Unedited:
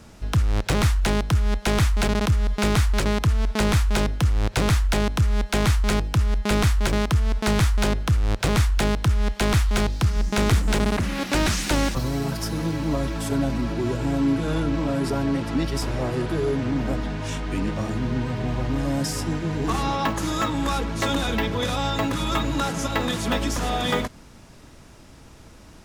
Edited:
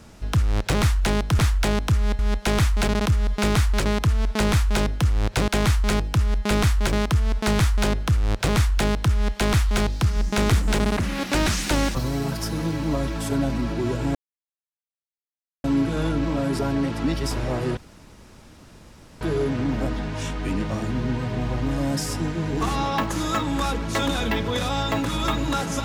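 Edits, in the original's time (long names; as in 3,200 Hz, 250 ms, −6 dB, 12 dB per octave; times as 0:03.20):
0:04.68–0:05.48: move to 0:01.39
0:14.15: splice in silence 1.49 s
0:16.28: splice in room tone 1.44 s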